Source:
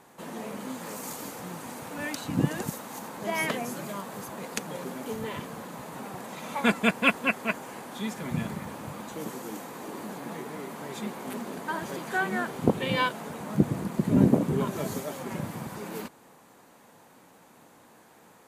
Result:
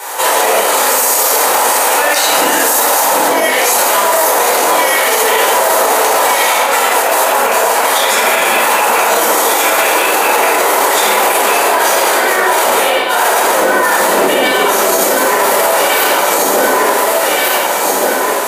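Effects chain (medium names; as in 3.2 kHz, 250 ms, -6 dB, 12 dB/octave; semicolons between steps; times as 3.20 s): high-pass 500 Hz 24 dB/octave; echo whose repeats swap between lows and highs 736 ms, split 1.2 kHz, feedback 69%, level -5 dB; compressor with a negative ratio -39 dBFS, ratio -1; treble shelf 5.4 kHz +9 dB; short-mantissa float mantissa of 6-bit; simulated room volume 590 m³, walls mixed, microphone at 4.6 m; loudness maximiser +21.5 dB; trim -1 dB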